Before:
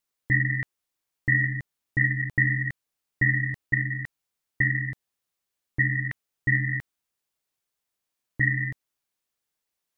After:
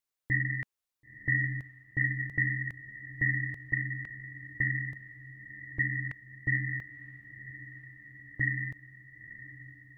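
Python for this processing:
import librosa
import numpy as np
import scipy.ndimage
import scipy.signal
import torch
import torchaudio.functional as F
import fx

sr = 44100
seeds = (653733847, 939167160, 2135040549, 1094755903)

p1 = fx.peak_eq(x, sr, hz=210.0, db=-3.5, octaves=0.7)
p2 = p1 + fx.echo_diffused(p1, sr, ms=992, feedback_pct=64, wet_db=-14.5, dry=0)
y = F.gain(torch.from_numpy(p2), -6.0).numpy()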